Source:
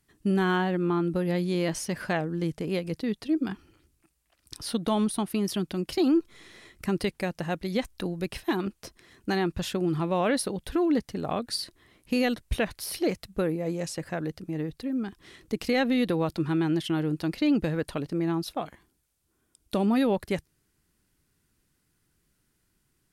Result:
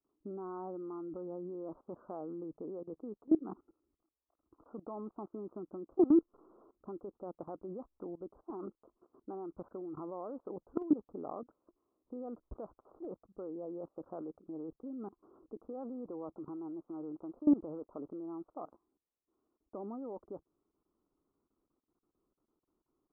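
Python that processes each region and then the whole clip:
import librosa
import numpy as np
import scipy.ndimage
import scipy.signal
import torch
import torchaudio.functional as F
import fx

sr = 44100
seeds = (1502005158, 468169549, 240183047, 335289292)

y = fx.chain(x, sr, fx.block_float(bits=5),
    fx.lowpass(hz=1300.0, slope=24), at=(15.89, 18.08))
y = scipy.signal.sosfilt(scipy.signal.butter(16, 1300.0, 'lowpass', fs=sr, output='sos'), y)
y = fx.low_shelf_res(y, sr, hz=210.0, db=-12.0, q=1.5)
y = fx.level_steps(y, sr, step_db=20)
y = y * 10.0 ** (-2.0 / 20.0)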